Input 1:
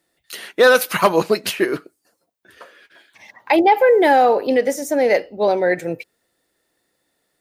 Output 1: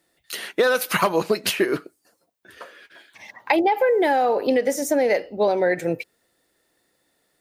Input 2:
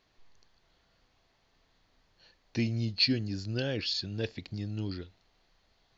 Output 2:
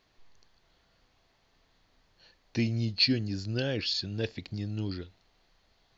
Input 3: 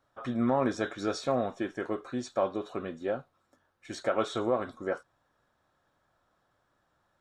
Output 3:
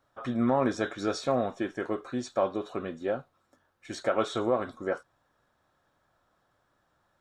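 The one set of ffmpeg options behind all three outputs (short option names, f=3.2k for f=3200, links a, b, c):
-af "acompressor=threshold=-17dB:ratio=12,volume=1.5dB"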